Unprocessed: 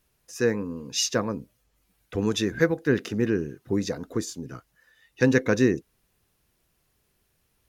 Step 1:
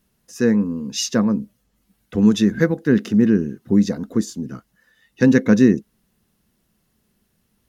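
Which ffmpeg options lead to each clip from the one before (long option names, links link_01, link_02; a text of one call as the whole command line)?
ffmpeg -i in.wav -af "equalizer=frequency=210:width_type=o:width=0.64:gain=14,bandreject=frequency=2400:width=15,volume=1.5dB" out.wav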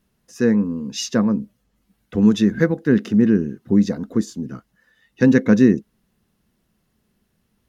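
ffmpeg -i in.wav -af "highshelf=frequency=5200:gain=-6.5" out.wav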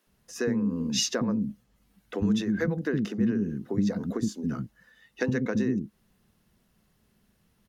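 ffmpeg -i in.wav -filter_complex "[0:a]acompressor=threshold=-22dB:ratio=6,acrossover=split=300[link_01][link_02];[link_01]adelay=70[link_03];[link_03][link_02]amix=inputs=2:normalize=0,volume=1dB" out.wav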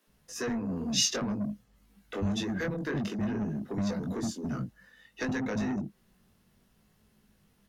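ffmpeg -i in.wav -filter_complex "[0:a]flanger=delay=19:depth=2.8:speed=0.56,acrossover=split=110|1700[link_01][link_02][link_03];[link_02]asoftclip=type=tanh:threshold=-34dB[link_04];[link_01][link_04][link_03]amix=inputs=3:normalize=0,volume=4dB" out.wav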